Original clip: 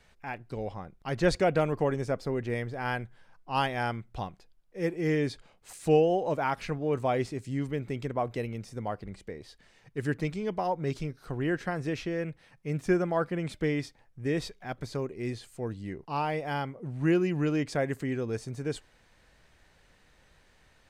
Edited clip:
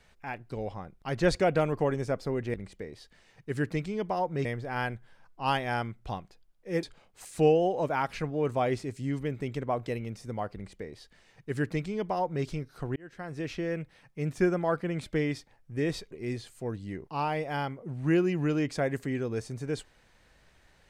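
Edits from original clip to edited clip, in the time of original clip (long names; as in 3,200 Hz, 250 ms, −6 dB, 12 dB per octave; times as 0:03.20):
0:04.92–0:05.31: remove
0:09.02–0:10.93: duplicate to 0:02.54
0:11.44–0:12.10: fade in
0:14.59–0:15.08: remove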